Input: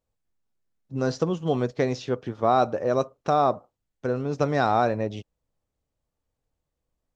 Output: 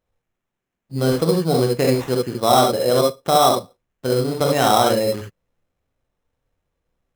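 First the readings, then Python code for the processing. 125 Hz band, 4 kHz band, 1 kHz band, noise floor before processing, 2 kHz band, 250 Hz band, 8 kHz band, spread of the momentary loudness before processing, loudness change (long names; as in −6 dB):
+6.5 dB, +16.5 dB, +6.0 dB, −83 dBFS, +4.5 dB, +6.5 dB, can't be measured, 10 LU, +7.0 dB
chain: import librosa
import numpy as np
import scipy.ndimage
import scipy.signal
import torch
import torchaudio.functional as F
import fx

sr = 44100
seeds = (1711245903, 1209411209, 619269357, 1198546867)

y = fx.rev_gated(x, sr, seeds[0], gate_ms=90, shape='rising', drr_db=0.0)
y = fx.sample_hold(y, sr, seeds[1], rate_hz=4600.0, jitter_pct=0)
y = y * librosa.db_to_amplitude(3.5)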